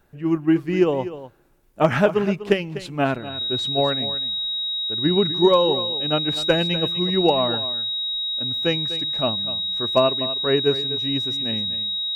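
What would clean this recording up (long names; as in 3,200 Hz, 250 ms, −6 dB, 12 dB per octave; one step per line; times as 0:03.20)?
clipped peaks rebuilt −6 dBFS
notch filter 3,800 Hz, Q 30
echo removal 248 ms −13.5 dB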